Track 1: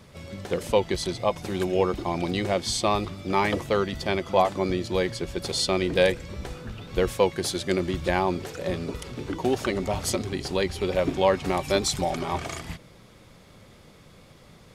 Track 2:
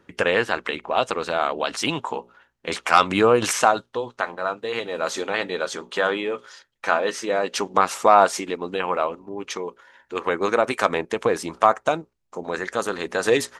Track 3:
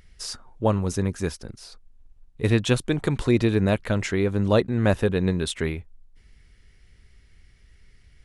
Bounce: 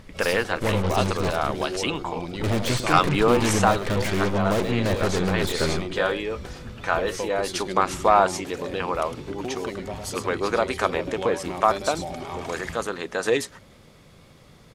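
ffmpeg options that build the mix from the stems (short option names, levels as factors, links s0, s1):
-filter_complex "[0:a]acompressor=threshold=0.0224:ratio=2,volume=0.891,asplit=2[s0][s1];[s1]volume=0.501[s2];[1:a]volume=0.708[s3];[2:a]asoftclip=type=tanh:threshold=0.075,aemphasis=mode=reproduction:type=50kf,aeval=exprs='0.075*(cos(1*acos(clip(val(0)/0.075,-1,1)))-cos(1*PI/2))+0.0188*(cos(8*acos(clip(val(0)/0.075,-1,1)))-cos(8*PI/2))':c=same,volume=1.33,asplit=2[s4][s5];[s5]volume=0.282[s6];[s2][s6]amix=inputs=2:normalize=0,aecho=0:1:106:1[s7];[s0][s3][s4][s7]amix=inputs=4:normalize=0"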